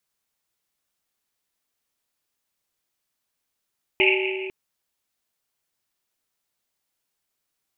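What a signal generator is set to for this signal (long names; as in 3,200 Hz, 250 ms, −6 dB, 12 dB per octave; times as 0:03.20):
drum after Risset length 0.50 s, pitch 380 Hz, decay 2.81 s, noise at 2,500 Hz, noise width 680 Hz, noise 50%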